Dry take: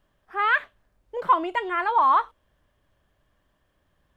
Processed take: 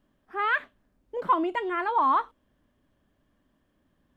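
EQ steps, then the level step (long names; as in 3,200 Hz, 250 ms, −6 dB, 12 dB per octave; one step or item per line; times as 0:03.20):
parametric band 250 Hz +13.5 dB 1 octave
−4.5 dB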